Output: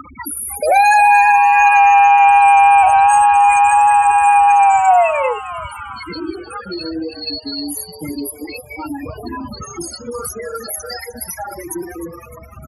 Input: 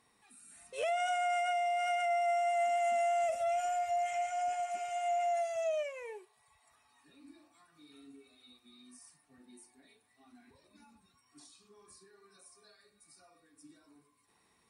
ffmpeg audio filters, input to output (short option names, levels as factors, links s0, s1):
-filter_complex "[0:a]acompressor=mode=upward:threshold=0.00891:ratio=2.5,asubboost=boost=2.5:cutoff=130,apsyclip=53.1,aeval=exprs='val(0)+0.0398*(sin(2*PI*60*n/s)+sin(2*PI*2*60*n/s)/2+sin(2*PI*3*60*n/s)/3+sin(2*PI*4*60*n/s)/4+sin(2*PI*5*60*n/s)/5)':c=same,asuperstop=centerf=2800:order=20:qfactor=2.5,bandreject=f=94.82:t=h:w=4,bandreject=f=189.64:t=h:w=4,bandreject=f=284.46:t=h:w=4,bandreject=f=379.28:t=h:w=4,bandreject=f=474.1:t=h:w=4,bandreject=f=568.92:t=h:w=4,bandreject=f=663.74:t=h:w=4,bandreject=f=758.56:t=h:w=4,bandreject=f=853.38:t=h:w=4,bandreject=f=948.2:t=h:w=4,bandreject=f=1043.02:t=h:w=4,bandreject=f=1137.84:t=h:w=4,bandreject=f=1232.66:t=h:w=4,bandreject=f=1327.48:t=h:w=4,bandreject=f=1422.3:t=h:w=4,bandreject=f=1517.12:t=h:w=4,bandreject=f=1611.94:t=h:w=4,bandreject=f=1706.76:t=h:w=4,bandreject=f=1801.58:t=h:w=4,bandreject=f=1896.4:t=h:w=4,bandreject=f=1991.22:t=h:w=4,asetrate=51156,aresample=44100,afftfilt=real='re*gte(hypot(re,im),0.355)':imag='im*gte(hypot(re,im),0.355)':win_size=1024:overlap=0.75,lowshelf=f=100:g=-7.5,asplit=2[s0][s1];[s1]asplit=5[s2][s3][s4][s5][s6];[s2]adelay=306,afreqshift=150,volume=0.211[s7];[s3]adelay=612,afreqshift=300,volume=0.11[s8];[s4]adelay=918,afreqshift=450,volume=0.0569[s9];[s5]adelay=1224,afreqshift=600,volume=0.0299[s10];[s6]adelay=1530,afreqshift=750,volume=0.0155[s11];[s7][s8][s9][s10][s11]amix=inputs=5:normalize=0[s12];[s0][s12]amix=inputs=2:normalize=0,volume=0.473"